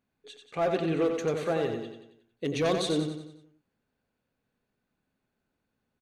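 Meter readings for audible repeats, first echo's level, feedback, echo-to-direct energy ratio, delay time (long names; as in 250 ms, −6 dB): 5, −6.0 dB, 48%, −5.0 dB, 91 ms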